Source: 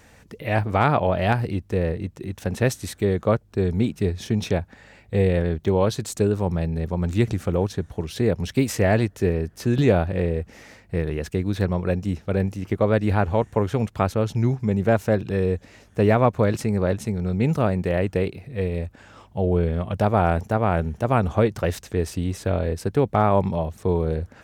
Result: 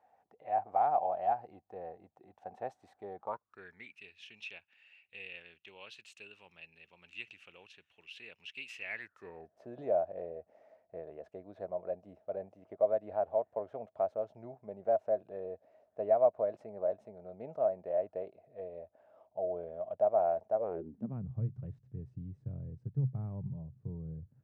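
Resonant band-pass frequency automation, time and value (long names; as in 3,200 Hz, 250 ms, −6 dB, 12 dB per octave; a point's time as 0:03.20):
resonant band-pass, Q 11
0:03.19 750 Hz
0:04.02 2,700 Hz
0:08.82 2,700 Hz
0:09.49 640 Hz
0:20.54 640 Hz
0:21.28 130 Hz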